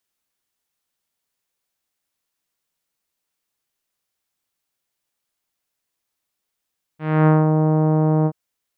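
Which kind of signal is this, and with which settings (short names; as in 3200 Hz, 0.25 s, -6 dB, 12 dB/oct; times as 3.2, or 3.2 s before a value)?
synth note saw D#3 24 dB/oct, low-pass 950 Hz, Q 0.74, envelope 1.5 oct, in 0.54 s, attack 0.277 s, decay 0.18 s, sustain -4 dB, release 0.06 s, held 1.27 s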